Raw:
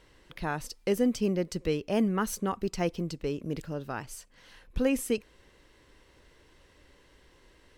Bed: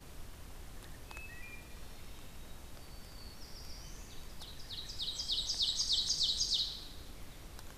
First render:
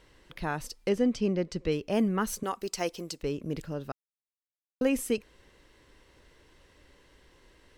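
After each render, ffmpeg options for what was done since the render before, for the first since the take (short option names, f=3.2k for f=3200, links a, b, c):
-filter_complex "[0:a]asettb=1/sr,asplit=3[a][b][c];[a]atrim=end=0.894[d];[b]atrim=start=0.89:end=1.72,asetpts=PTS-STARTPTS,afade=t=in:d=0.004:c=qsin,afade=t=out:st=0.826:d=0.004:c=qsin,lowpass=5.8k[e];[c]atrim=start=1.716[f];[d][e]acrossfade=d=0.004:c1=hsin:c2=qsin[g];[g][f]acrossfade=d=0.004:c1=qsin:c2=hsin,asettb=1/sr,asplit=3[h][i][j];[h]atrim=end=2.434[k];[i]atrim=start=2.43:end=3.23,asetpts=PTS-STARTPTS,afade=t=in:d=0.004:c=qsin,afade=t=out:st=0.796:d=0.004:c=qsin,bass=f=250:g=-14,treble=f=4k:g=8[l];[j]atrim=start=3.226[m];[k][l]acrossfade=d=0.004:c1=hsin:c2=qsin[n];[n][m]acrossfade=d=0.004:c1=qsin:c2=hsin,asplit=3[o][p][q];[o]atrim=end=3.92,asetpts=PTS-STARTPTS,afade=t=out:st=3.916:d=0.004:c=hsin[r];[p]atrim=start=3.92:end=4.81,asetpts=PTS-STARTPTS,volume=0[s];[q]atrim=start=4.81,asetpts=PTS-STARTPTS,afade=t=in:d=0.004:c=hsin[t];[r][s][t]concat=n=3:v=0:a=1"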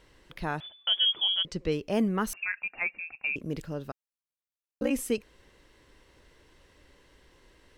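-filter_complex "[0:a]asettb=1/sr,asplit=3[a][b][c];[a]atrim=end=0.604[d];[b]atrim=start=0.6:end=1.45,asetpts=PTS-STARTPTS,afade=t=in:d=0.004:c=qsin,afade=t=out:st=0.846:d=0.004:c=qsin,lowpass=f=3k:t=q:w=0.5098,lowpass=f=3k:t=q:w=0.6013,lowpass=f=3k:t=q:w=0.9,lowpass=f=3k:t=q:w=2.563,afreqshift=-3500[e];[c]atrim=start=1.446[f];[d][e]acrossfade=d=0.004:c1=hsin:c2=qsin[g];[g][f]acrossfade=d=0.004:c1=qsin:c2=hsin,asettb=1/sr,asplit=3[h][i][j];[h]atrim=end=2.334[k];[i]atrim=start=2.33:end=3.36,asetpts=PTS-STARTPTS,afade=t=in:d=0.004:c=qsin,afade=t=out:st=1.026:d=0.004:c=qsin,lowpass=f=2.4k:t=q:w=0.5098,lowpass=f=2.4k:t=q:w=0.6013,lowpass=f=2.4k:t=q:w=0.9,lowpass=f=2.4k:t=q:w=2.563,afreqshift=-2800[l];[j]atrim=start=3.356[m];[k][l]acrossfade=d=0.004:c1=hsin:c2=qsin[n];[n][m]acrossfade=d=0.004:c1=qsin:c2=hsin,asettb=1/sr,asplit=3[o][p][q];[o]atrim=end=3.904[r];[p]atrim=start=3.9:end=4.91,asetpts=PTS-STARTPTS,afade=t=in:d=0.004:c=qsin,afade=t=out:st=1.006:d=0.004:c=qsin,aeval=exprs='val(0)*sin(2*PI*30*n/s)':c=same[s];[q]atrim=start=4.906[t];[r][s]acrossfade=d=0.004:c1=hsin:c2=qsin[u];[u][t]acrossfade=d=0.004:c1=qsin:c2=hsin"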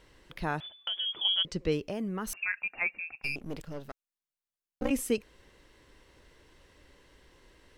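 -filter_complex "[0:a]asettb=1/sr,asplit=3[a][b][c];[a]atrim=end=0.744[d];[b]atrim=start=0.74:end=1.25,asetpts=PTS-STARTPTS,afade=t=in:d=0.004:c=qsin,afade=t=out:st=0.506:d=0.004:c=qsin,acompressor=threshold=-30dB:ratio=6:attack=3.2:release=140:knee=1:detection=peak[e];[c]atrim=start=1.246[f];[d][e]acrossfade=d=0.004:c1=hsin:c2=qsin[g];[g][f]acrossfade=d=0.004:c1=qsin:c2=hsin,asettb=1/sr,asplit=3[h][i][j];[h]atrim=end=1.884[k];[i]atrim=start=1.88:end=2.33,asetpts=PTS-STARTPTS,afade=t=in:d=0.004:c=qsin,afade=t=out:st=0.446:d=0.004:c=qsin,acompressor=threshold=-31dB:ratio=5:attack=3.2:release=140:knee=1:detection=peak[l];[j]atrim=start=2.326[m];[k][l]acrossfade=d=0.004:c1=hsin:c2=qsin[n];[n][m]acrossfade=d=0.004:c1=qsin:c2=hsin,asettb=1/sr,asplit=3[o][p][q];[o]atrim=end=3.224[r];[p]atrim=start=3.22:end=4.91,asetpts=PTS-STARTPTS,afade=t=in:d=0.004:c=qsin,afade=t=out:st=1.686:d=0.004:c=qsin,aeval=exprs='if(lt(val(0),0),0.251*val(0),val(0))':c=same[s];[q]atrim=start=4.906[t];[r][s]acrossfade=d=0.004:c1=hsin:c2=qsin[u];[u][t]acrossfade=d=0.004:c1=qsin:c2=hsin"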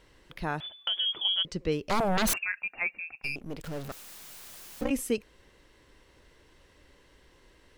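-filter_complex "[0:a]asplit=3[a][b][c];[a]afade=t=out:st=1.89:d=0.02[d];[b]aeval=exprs='0.075*sin(PI/2*5.01*val(0)/0.075)':c=same,afade=t=in:st=1.89:d=0.02,afade=t=out:st=2.37:d=0.02[e];[c]afade=t=in:st=2.37:d=0.02[f];[d][e][f]amix=inputs=3:normalize=0,asettb=1/sr,asplit=3[g][h][i];[g]atrim=end=3.644[j];[h]atrim=start=3.64:end=4.84,asetpts=PTS-STARTPTS,afade=t=in:d=0.004:c=qsin,afade=t=out:st=1.196:d=0.004:c=qsin,aeval=exprs='val(0)+0.5*0.0141*sgn(val(0))':c=same[k];[i]atrim=start=4.836[l];[j][k]acrossfade=d=0.004:c1=hsin:c2=qsin[m];[m][l]acrossfade=d=0.004:c1=qsin:c2=hsin,asplit=3[n][o][p];[n]atrim=end=0.602[q];[o]atrim=start=0.598:end=1.182,asetpts=PTS-STARTPTS,volume=4dB[r];[p]atrim=start=1.178[s];[q][r]acrossfade=d=0.004:c1=hsin:c2=hsin[t];[t][s]acrossfade=d=0.004:c1=hsin:c2=hsin"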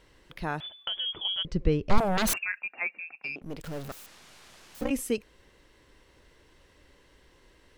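-filter_complex "[0:a]asettb=1/sr,asplit=3[a][b][c];[a]atrim=end=0.854[d];[b]atrim=start=0.85:end=1.98,asetpts=PTS-STARTPTS,afade=t=in:d=0.004:c=qsin,afade=t=out:st=1.126:d=0.004:c=qsin,aemphasis=mode=reproduction:type=bsi[e];[c]atrim=start=1.976[f];[d][e]acrossfade=d=0.004:c1=hsin:c2=qsin[g];[g][f]acrossfade=d=0.004:c1=qsin:c2=hsin,asettb=1/sr,asplit=3[h][i][j];[h]atrim=end=2.584[k];[i]atrim=start=2.58:end=3.42,asetpts=PTS-STARTPTS,afade=t=in:d=0.004:c=qsin,afade=t=out:st=0.836:d=0.004:c=qsin,highpass=230,lowpass=3.2k[l];[j]atrim=start=3.416[m];[k][l]acrossfade=d=0.004:c1=hsin:c2=qsin[n];[n][m]acrossfade=d=0.004:c1=qsin:c2=hsin,asettb=1/sr,asplit=3[o][p][q];[o]atrim=end=4.064[r];[p]atrim=start=4.06:end=4.75,asetpts=PTS-STARTPTS,afade=t=in:d=0.004:c=qsin,afade=t=out:st=0.686:d=0.004:c=qsin,adynamicsmooth=sensitivity=7.5:basefreq=5.5k[s];[q]atrim=start=4.746[t];[r][s]acrossfade=d=0.004:c1=hsin:c2=qsin[u];[u][t]acrossfade=d=0.004:c1=qsin:c2=hsin"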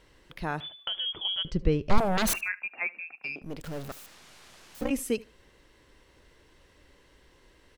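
-af "aecho=1:1:75|150:0.0794|0.0143"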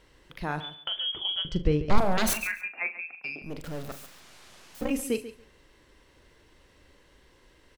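-filter_complex "[0:a]asplit=2[a][b];[b]adelay=40,volume=-11dB[c];[a][c]amix=inputs=2:normalize=0,aecho=1:1:139|278:0.2|0.0299"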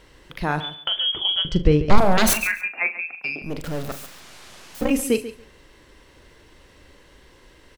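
-af "volume=8dB,alimiter=limit=-2dB:level=0:latency=1"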